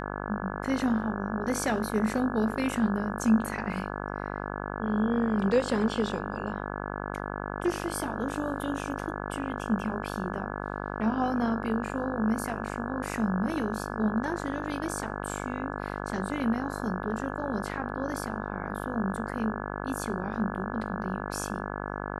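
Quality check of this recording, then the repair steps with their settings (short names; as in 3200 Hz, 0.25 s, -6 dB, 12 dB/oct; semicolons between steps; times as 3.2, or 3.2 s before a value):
buzz 50 Hz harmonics 34 -35 dBFS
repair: de-hum 50 Hz, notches 34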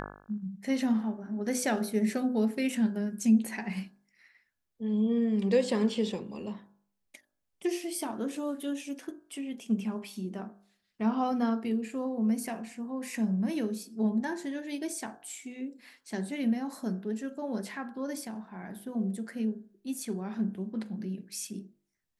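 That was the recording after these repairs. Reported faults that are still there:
none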